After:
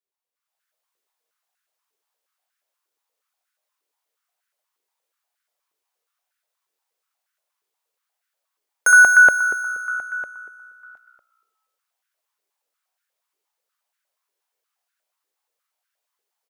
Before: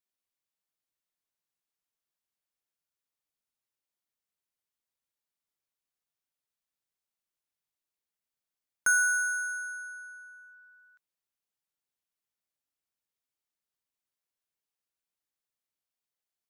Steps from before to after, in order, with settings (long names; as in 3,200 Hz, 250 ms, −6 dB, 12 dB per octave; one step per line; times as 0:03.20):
echo with shifted repeats 261 ms, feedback 45%, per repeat −61 Hz, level −20.5 dB
convolution reverb, pre-delay 3 ms, DRR 8.5 dB
automatic gain control gain up to 12.5 dB
high-pass on a step sequencer 8.4 Hz 410–1,500 Hz
level −4.5 dB